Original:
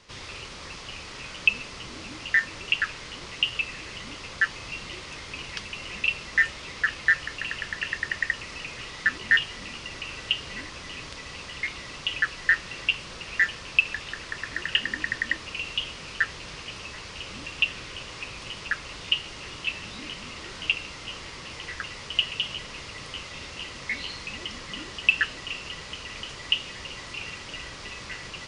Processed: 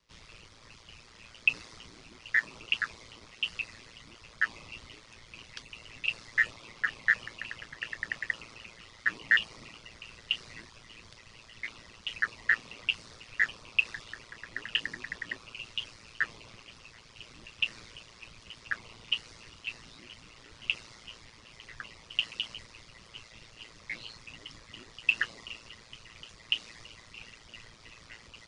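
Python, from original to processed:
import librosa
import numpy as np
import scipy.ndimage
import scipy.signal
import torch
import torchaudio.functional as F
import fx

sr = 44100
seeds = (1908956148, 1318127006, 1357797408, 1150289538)

y = fx.dereverb_blind(x, sr, rt60_s=0.67)
y = y * np.sin(2.0 * np.pi * 57.0 * np.arange(len(y)) / sr)
y = fx.band_widen(y, sr, depth_pct=40)
y = y * librosa.db_to_amplitude(-4.5)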